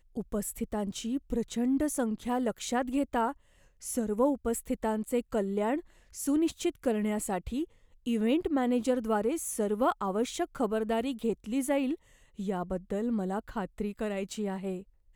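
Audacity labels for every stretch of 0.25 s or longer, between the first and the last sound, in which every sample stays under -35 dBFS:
3.320000	3.850000	silence
5.800000	6.170000	silence
7.640000	8.070000	silence
11.950000	12.390000	silence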